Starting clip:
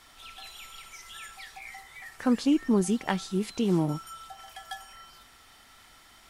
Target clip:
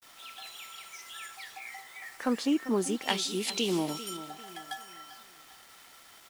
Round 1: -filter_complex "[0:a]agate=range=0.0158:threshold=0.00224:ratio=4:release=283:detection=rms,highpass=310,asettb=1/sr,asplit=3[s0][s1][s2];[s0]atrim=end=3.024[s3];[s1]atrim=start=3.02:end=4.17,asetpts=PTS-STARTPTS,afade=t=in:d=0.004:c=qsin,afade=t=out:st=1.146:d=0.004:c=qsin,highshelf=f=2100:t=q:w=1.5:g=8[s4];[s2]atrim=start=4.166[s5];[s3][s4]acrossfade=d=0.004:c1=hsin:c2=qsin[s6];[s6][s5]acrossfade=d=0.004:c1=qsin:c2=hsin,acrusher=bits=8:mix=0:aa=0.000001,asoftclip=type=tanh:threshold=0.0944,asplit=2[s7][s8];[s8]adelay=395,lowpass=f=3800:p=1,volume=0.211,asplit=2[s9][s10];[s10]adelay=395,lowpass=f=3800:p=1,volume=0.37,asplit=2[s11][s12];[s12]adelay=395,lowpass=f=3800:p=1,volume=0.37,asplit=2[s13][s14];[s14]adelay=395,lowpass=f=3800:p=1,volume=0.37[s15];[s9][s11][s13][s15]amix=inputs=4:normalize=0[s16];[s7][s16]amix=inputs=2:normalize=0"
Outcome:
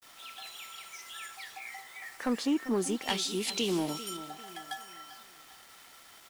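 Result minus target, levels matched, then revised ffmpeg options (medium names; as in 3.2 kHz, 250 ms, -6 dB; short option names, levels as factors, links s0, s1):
saturation: distortion +11 dB
-filter_complex "[0:a]agate=range=0.0158:threshold=0.00224:ratio=4:release=283:detection=rms,highpass=310,asettb=1/sr,asplit=3[s0][s1][s2];[s0]atrim=end=3.024[s3];[s1]atrim=start=3.02:end=4.17,asetpts=PTS-STARTPTS,afade=t=in:d=0.004:c=qsin,afade=t=out:st=1.146:d=0.004:c=qsin,highshelf=f=2100:t=q:w=1.5:g=8[s4];[s2]atrim=start=4.166[s5];[s3][s4]acrossfade=d=0.004:c1=hsin:c2=qsin[s6];[s6][s5]acrossfade=d=0.004:c1=qsin:c2=hsin,acrusher=bits=8:mix=0:aa=0.000001,asoftclip=type=tanh:threshold=0.266,asplit=2[s7][s8];[s8]adelay=395,lowpass=f=3800:p=1,volume=0.211,asplit=2[s9][s10];[s10]adelay=395,lowpass=f=3800:p=1,volume=0.37,asplit=2[s11][s12];[s12]adelay=395,lowpass=f=3800:p=1,volume=0.37,asplit=2[s13][s14];[s14]adelay=395,lowpass=f=3800:p=1,volume=0.37[s15];[s9][s11][s13][s15]amix=inputs=4:normalize=0[s16];[s7][s16]amix=inputs=2:normalize=0"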